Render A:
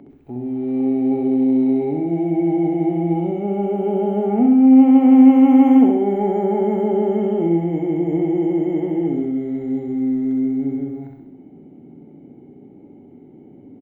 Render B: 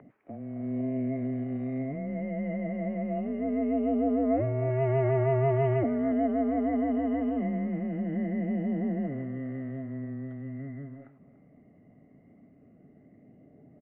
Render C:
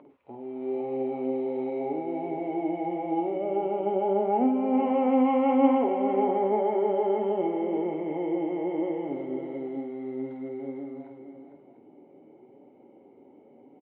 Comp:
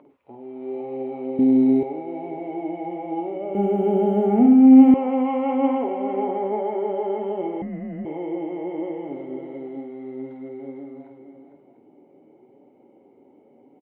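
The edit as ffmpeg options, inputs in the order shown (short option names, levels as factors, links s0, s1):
-filter_complex "[0:a]asplit=2[s0][s1];[2:a]asplit=4[s2][s3][s4][s5];[s2]atrim=end=1.392[s6];[s0]atrim=start=1.388:end=1.832[s7];[s3]atrim=start=1.828:end=3.552[s8];[s1]atrim=start=3.548:end=4.942[s9];[s4]atrim=start=4.938:end=7.622[s10];[1:a]atrim=start=7.618:end=8.052[s11];[s5]atrim=start=8.048[s12];[s6][s7]acrossfade=d=0.004:c1=hsin:c2=hsin[s13];[s13][s8]acrossfade=d=0.004:c1=hsin:c2=hsin[s14];[s14][s9]acrossfade=d=0.004:c1=hsin:c2=hsin[s15];[s15][s10]acrossfade=d=0.004:c1=hsin:c2=hsin[s16];[s16][s11]acrossfade=d=0.004:c1=hsin:c2=hsin[s17];[s17][s12]acrossfade=d=0.004:c1=hsin:c2=hsin"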